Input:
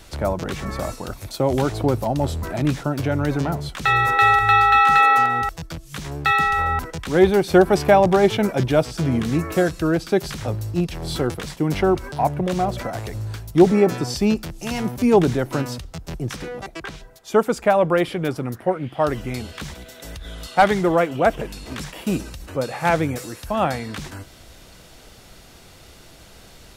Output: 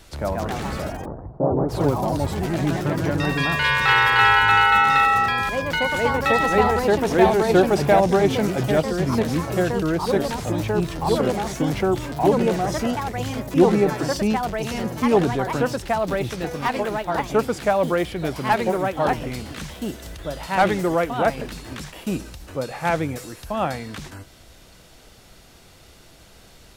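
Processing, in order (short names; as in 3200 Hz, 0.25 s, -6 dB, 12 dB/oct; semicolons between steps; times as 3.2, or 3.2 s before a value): 0.82–1.73 inverse Chebyshev low-pass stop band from 2700 Hz, stop band 60 dB; echoes that change speed 0.158 s, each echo +2 st, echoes 3; gain -3 dB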